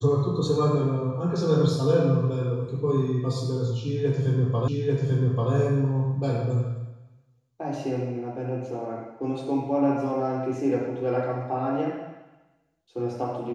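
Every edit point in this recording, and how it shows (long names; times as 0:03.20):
0:04.68: the same again, the last 0.84 s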